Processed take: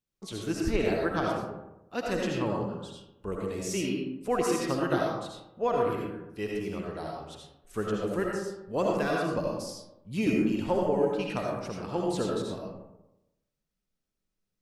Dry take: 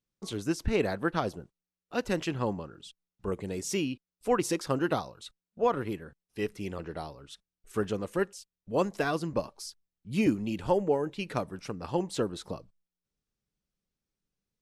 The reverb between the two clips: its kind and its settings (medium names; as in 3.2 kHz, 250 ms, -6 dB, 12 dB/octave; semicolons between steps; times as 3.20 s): algorithmic reverb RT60 0.94 s, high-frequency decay 0.45×, pre-delay 40 ms, DRR -2 dB; trim -2.5 dB